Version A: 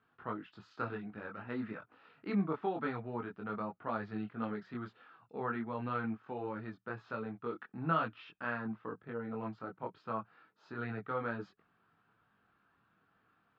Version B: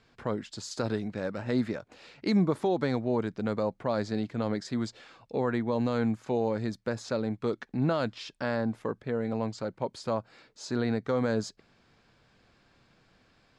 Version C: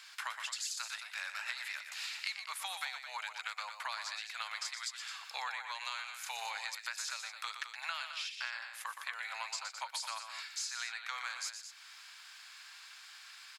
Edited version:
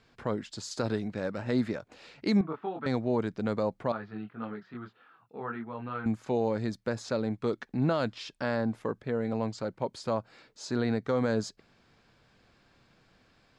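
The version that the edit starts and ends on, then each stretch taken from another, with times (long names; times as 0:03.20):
B
0:02.41–0:02.86: punch in from A
0:03.92–0:06.06: punch in from A
not used: C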